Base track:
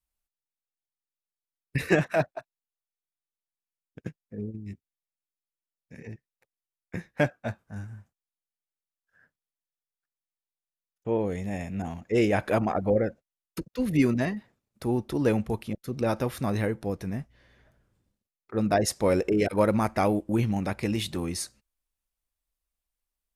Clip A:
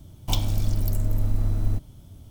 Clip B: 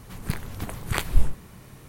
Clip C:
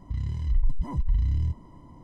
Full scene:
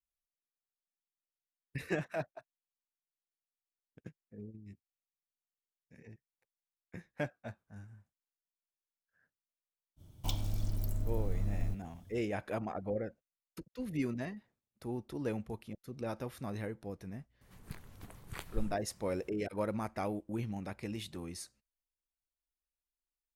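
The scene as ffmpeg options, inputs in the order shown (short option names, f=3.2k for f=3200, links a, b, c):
-filter_complex "[0:a]volume=-12.5dB[a];[1:a]atrim=end=2.3,asetpts=PTS-STARTPTS,volume=-11dB,afade=t=in:d=0.05,afade=t=out:st=2.25:d=0.05,adelay=9960[b];[2:a]atrim=end=1.88,asetpts=PTS-STARTPTS,volume=-18dB,afade=t=in:d=0.004:c=hsin,afade=t=out:st=1.876:d=0.004:c=hsin,adelay=17410[c];[a][b][c]amix=inputs=3:normalize=0"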